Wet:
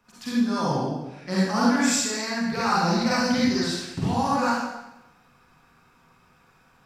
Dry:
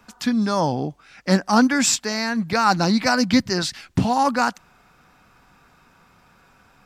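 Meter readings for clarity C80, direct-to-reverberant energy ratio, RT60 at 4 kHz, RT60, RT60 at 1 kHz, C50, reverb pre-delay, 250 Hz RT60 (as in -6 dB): 0.5 dB, -8.0 dB, 0.85 s, 1.0 s, 0.95 s, -4.0 dB, 39 ms, 1.0 s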